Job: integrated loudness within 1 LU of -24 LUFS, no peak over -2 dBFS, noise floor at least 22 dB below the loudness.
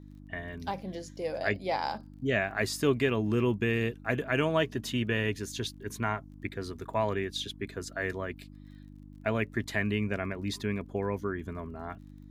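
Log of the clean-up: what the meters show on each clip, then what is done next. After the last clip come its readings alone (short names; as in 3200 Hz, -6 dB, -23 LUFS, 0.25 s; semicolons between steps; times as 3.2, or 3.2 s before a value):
ticks 32/s; hum 50 Hz; harmonics up to 300 Hz; hum level -46 dBFS; loudness -32.0 LUFS; peak -13.0 dBFS; loudness target -24.0 LUFS
-> de-click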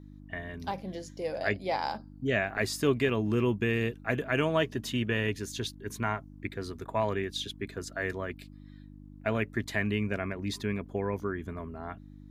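ticks 0.081/s; hum 50 Hz; harmonics up to 300 Hz; hum level -46 dBFS
-> de-hum 50 Hz, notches 6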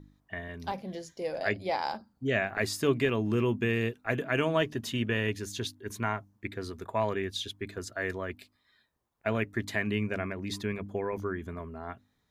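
hum none; loudness -32.0 LUFS; peak -13.5 dBFS; loudness target -24.0 LUFS
-> gain +8 dB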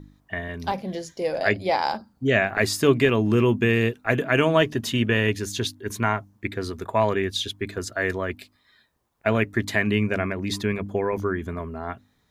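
loudness -24.0 LUFS; peak -5.5 dBFS; noise floor -66 dBFS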